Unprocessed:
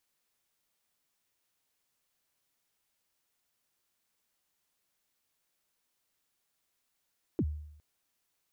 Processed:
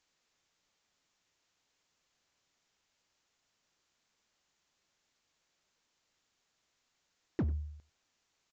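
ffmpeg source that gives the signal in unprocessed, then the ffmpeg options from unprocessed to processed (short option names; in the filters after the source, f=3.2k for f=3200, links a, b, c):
-f lavfi -i "aevalsrc='0.0631*pow(10,-3*t/0.76)*sin(2*PI*(400*0.055/log(75/400)*(exp(log(75/400)*min(t,0.055)/0.055)-1)+75*max(t-0.055,0)))':d=0.41:s=44100"
-filter_complex "[0:a]asplit=2[a][b];[b]aeval=exprs='0.0168*(abs(mod(val(0)/0.0168+3,4)-2)-1)':c=same,volume=-4dB[c];[a][c]amix=inputs=2:normalize=0,aecho=1:1:95:0.1,aresample=16000,aresample=44100"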